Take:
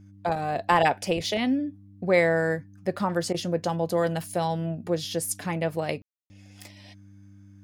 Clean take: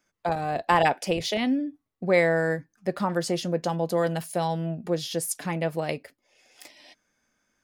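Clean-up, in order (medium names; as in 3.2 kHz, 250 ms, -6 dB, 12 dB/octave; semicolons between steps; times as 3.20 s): de-hum 99.1 Hz, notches 3; room tone fill 6.02–6.30 s; interpolate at 3.33 s, 12 ms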